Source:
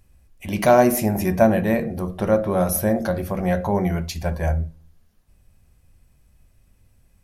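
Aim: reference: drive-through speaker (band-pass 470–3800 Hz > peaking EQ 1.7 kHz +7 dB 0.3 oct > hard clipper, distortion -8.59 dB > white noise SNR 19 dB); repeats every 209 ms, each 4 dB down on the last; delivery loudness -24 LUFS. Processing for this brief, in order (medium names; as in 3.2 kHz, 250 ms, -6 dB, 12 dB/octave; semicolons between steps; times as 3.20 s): band-pass 470–3800 Hz; peaking EQ 1.7 kHz +7 dB 0.3 oct; feedback delay 209 ms, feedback 63%, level -4 dB; hard clipper -17.5 dBFS; white noise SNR 19 dB; trim +0.5 dB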